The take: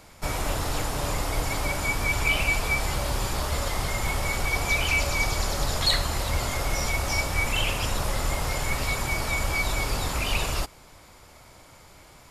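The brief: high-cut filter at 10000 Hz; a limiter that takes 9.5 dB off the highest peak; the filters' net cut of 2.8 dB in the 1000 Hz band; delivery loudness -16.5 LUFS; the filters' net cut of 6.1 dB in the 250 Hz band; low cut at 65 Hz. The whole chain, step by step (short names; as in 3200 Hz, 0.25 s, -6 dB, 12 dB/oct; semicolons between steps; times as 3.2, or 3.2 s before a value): HPF 65 Hz; LPF 10000 Hz; bell 250 Hz -9 dB; bell 1000 Hz -3 dB; gain +12.5 dB; limiter -7 dBFS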